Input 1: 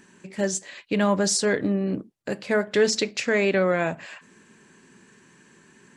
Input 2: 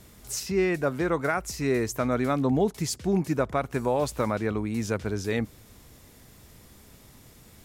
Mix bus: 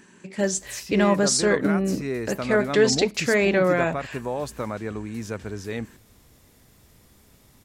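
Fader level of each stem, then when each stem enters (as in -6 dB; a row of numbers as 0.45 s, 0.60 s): +1.5 dB, -3.5 dB; 0.00 s, 0.40 s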